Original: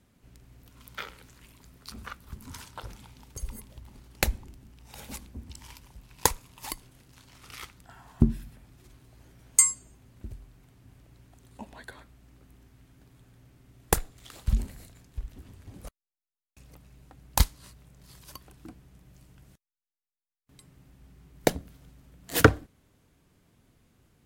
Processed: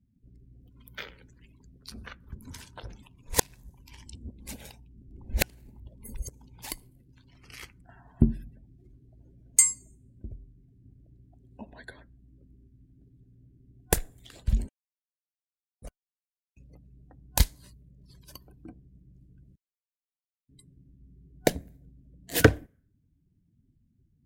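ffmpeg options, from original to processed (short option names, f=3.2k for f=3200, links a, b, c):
-filter_complex "[0:a]asettb=1/sr,asplit=3[a][b][c];[a]atrim=end=7.404[d];[b]atrim=start=7.4:end=8.04,asetpts=PTS-STARTPTS,afade=t=in:d=0.004:c=qsin,afade=t=out:st=0.636:d=0.004:c=qsin,bandreject=f=3.6k:w=6.4[e];[c]atrim=start=8.036[f];[d][e]acrossfade=d=0.004:c1=hsin:c2=qsin[g];[g][f]acrossfade=d=0.004:c1=qsin:c2=hsin,asplit=5[h][i][j][k][l];[h]atrim=end=3.032[m];[i]atrim=start=3.028:end=6.622,asetpts=PTS-STARTPTS,areverse[n];[j]atrim=start=6.618:end=14.69,asetpts=PTS-STARTPTS,afade=t=out:st=8.068:d=0.004:c=hsin[o];[k]atrim=start=14.69:end=15.82,asetpts=PTS-STARTPTS,volume=0[p];[l]atrim=start=15.82,asetpts=PTS-STARTPTS,afade=t=in:d=0.004:c=hsin[q];[m][n]acrossfade=d=0.004:c1=hsin:c2=hsin[r];[o][p][q]concat=n=3:v=0:a=1[s];[r][s]acrossfade=d=0.004:c1=hsin:c2=hsin,afftdn=nr=27:nf=-55,superequalizer=9b=0.562:10b=0.398"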